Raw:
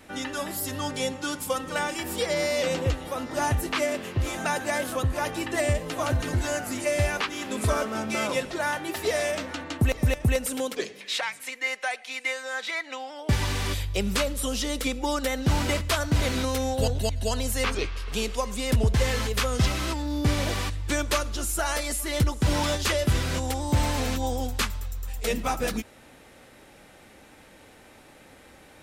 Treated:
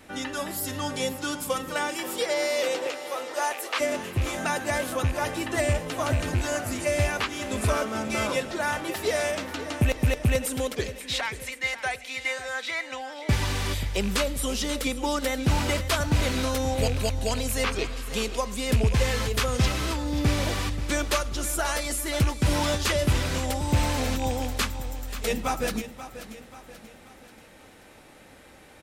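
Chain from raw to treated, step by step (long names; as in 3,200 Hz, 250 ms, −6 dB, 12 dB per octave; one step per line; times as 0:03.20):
loose part that buzzes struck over −24 dBFS, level −25 dBFS
0:01.73–0:03.79: high-pass filter 210 Hz → 510 Hz 24 dB per octave
repeating echo 534 ms, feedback 47%, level −13 dB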